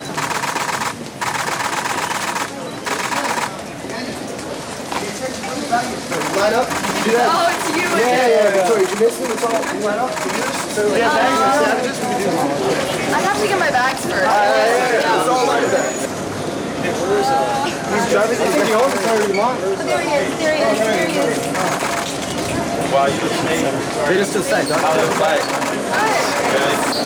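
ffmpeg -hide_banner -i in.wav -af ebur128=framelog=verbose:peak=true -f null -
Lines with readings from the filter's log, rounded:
Integrated loudness:
  I:         -17.5 LUFS
  Threshold: -27.5 LUFS
Loudness range:
  LRA:         5.5 LU
  Threshold: -37.4 LUFS
  LRA low:   -21.3 LUFS
  LRA high:  -15.7 LUFS
True peak:
  Peak:       -3.2 dBFS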